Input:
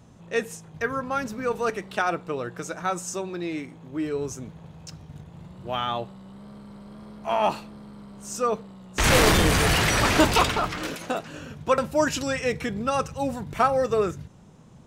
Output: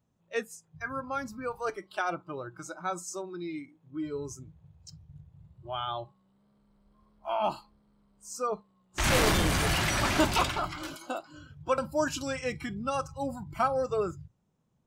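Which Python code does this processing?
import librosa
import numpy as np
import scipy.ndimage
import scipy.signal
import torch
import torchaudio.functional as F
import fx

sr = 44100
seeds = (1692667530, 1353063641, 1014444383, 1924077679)

y = fx.noise_reduce_blind(x, sr, reduce_db=18)
y = F.gain(torch.from_numpy(y), -6.0).numpy()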